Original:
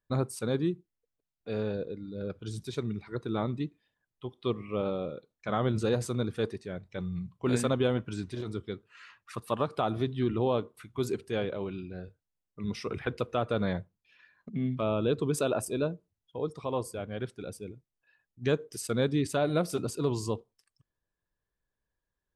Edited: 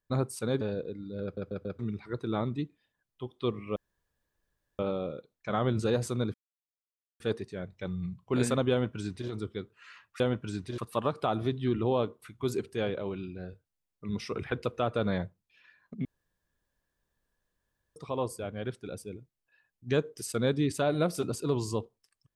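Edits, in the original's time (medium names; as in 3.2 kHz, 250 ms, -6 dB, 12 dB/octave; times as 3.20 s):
0.61–1.63 s: delete
2.25 s: stutter in place 0.14 s, 4 plays
4.78 s: insert room tone 1.03 s
6.33 s: insert silence 0.86 s
7.84–8.42 s: copy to 9.33 s
14.60–16.51 s: room tone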